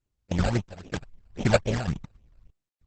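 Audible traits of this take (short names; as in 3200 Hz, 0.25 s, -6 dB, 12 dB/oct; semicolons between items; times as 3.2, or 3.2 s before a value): random-step tremolo 3.2 Hz, depth 100%; aliases and images of a low sample rate 1100 Hz, jitter 20%; phasing stages 12, 3.7 Hz, lowest notch 320–1600 Hz; Opus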